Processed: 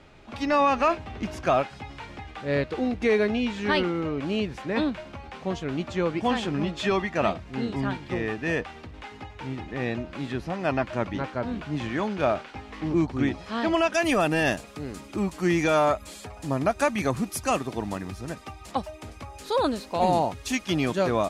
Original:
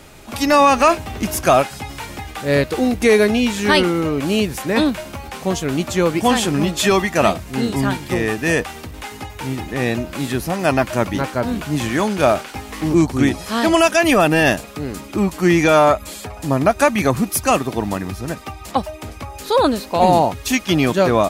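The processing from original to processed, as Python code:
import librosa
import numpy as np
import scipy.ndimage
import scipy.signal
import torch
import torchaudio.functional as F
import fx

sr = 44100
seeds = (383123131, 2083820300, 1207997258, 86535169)

y = fx.lowpass(x, sr, hz=fx.steps((0.0, 3700.0), (13.94, 10000.0)), slope=12)
y = F.gain(torch.from_numpy(y), -9.0).numpy()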